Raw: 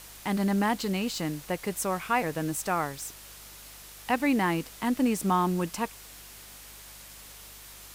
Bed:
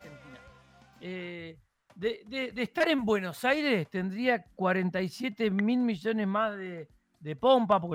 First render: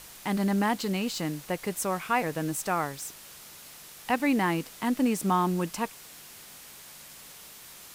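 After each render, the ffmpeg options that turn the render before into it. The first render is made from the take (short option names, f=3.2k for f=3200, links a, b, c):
-af "bandreject=f=50:t=h:w=4,bandreject=f=100:t=h:w=4"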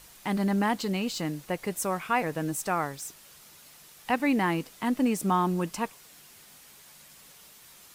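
-af "afftdn=nr=6:nf=-48"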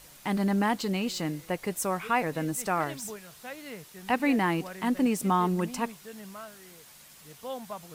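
-filter_complex "[1:a]volume=-15dB[a];[0:a][a]amix=inputs=2:normalize=0"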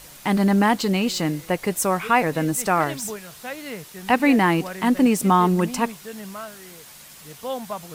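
-af "volume=8dB"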